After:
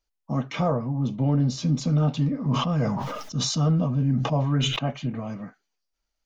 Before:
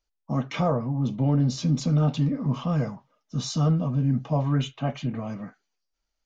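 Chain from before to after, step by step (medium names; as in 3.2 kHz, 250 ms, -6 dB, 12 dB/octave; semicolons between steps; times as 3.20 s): 2.48–4.79 s: decay stretcher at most 33 dB/s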